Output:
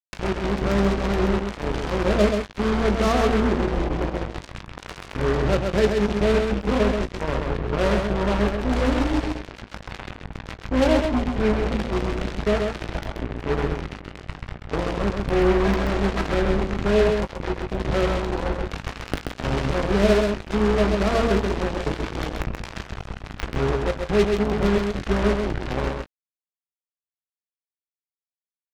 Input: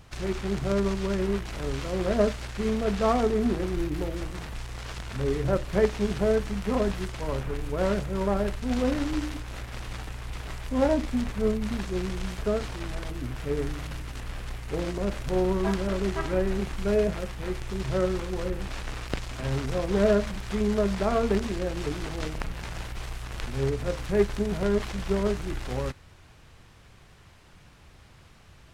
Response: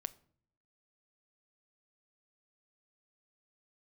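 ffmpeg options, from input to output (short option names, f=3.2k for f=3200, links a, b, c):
-filter_complex "[0:a]aemphasis=mode=reproduction:type=50kf,anlmdn=0.158,adynamicequalizer=threshold=0.00891:dfrequency=890:dqfactor=1.1:tfrequency=890:tqfactor=1.1:attack=5:release=100:ratio=0.375:range=2:mode=cutabove:tftype=bell,asplit=2[a][b];[b]acompressor=threshold=-38dB:ratio=6,volume=2dB[c];[a][c]amix=inputs=2:normalize=0,acrusher=bits=3:mix=0:aa=0.5,asplit=2[d][e];[e]adelay=19,volume=-11dB[f];[d][f]amix=inputs=2:normalize=0,asplit=2[g][h];[h]aecho=0:1:131:0.596[i];[g][i]amix=inputs=2:normalize=0,volume=1.5dB"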